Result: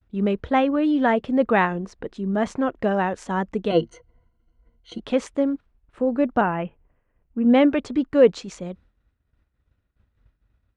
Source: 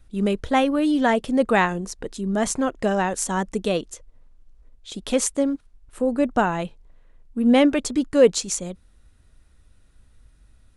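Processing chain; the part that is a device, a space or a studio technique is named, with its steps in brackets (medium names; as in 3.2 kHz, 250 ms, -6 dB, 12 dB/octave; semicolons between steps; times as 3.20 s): hearing-loss simulation (low-pass 2.6 kHz 12 dB/octave; expander -44 dBFS); high-pass 46 Hz 12 dB/octave; 3.70–5.00 s: rippled EQ curve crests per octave 1.9, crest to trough 18 dB; 6.41–7.45 s: steep low-pass 3.1 kHz 72 dB/octave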